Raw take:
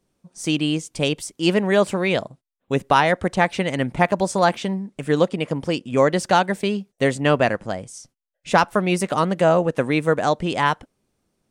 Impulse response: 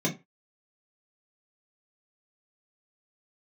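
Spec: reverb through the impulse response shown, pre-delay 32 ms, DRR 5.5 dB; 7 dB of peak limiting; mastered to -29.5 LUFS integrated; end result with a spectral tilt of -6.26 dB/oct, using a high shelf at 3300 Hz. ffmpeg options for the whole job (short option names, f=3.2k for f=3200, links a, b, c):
-filter_complex "[0:a]highshelf=f=3.3k:g=-7,alimiter=limit=-11.5dB:level=0:latency=1,asplit=2[a][b];[1:a]atrim=start_sample=2205,adelay=32[c];[b][c]afir=irnorm=-1:irlink=0,volume=-14.5dB[d];[a][d]amix=inputs=2:normalize=0,volume=-10.5dB"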